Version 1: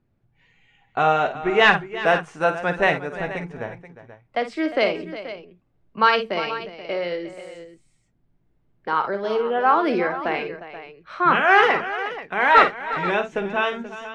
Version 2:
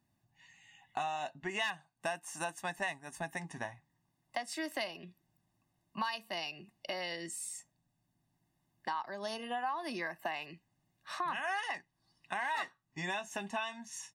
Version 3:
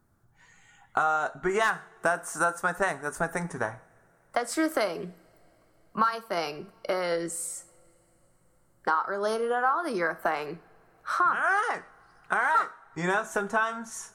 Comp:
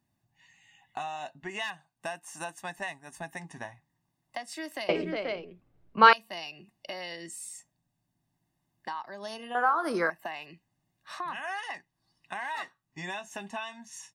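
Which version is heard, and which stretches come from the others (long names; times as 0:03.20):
2
0:04.89–0:06.13: punch in from 1
0:09.55–0:10.10: punch in from 3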